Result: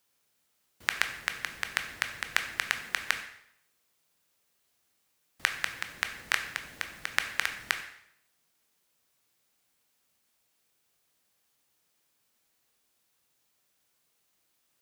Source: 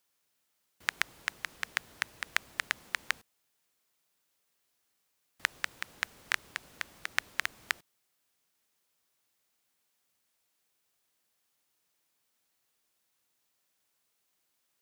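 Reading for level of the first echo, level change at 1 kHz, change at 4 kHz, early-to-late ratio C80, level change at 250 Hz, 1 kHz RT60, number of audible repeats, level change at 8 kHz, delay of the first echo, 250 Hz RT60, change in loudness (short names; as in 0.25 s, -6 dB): none, +3.5 dB, +3.5 dB, 12.0 dB, +5.0 dB, 0.70 s, none, +3.5 dB, none, 0.65 s, +3.5 dB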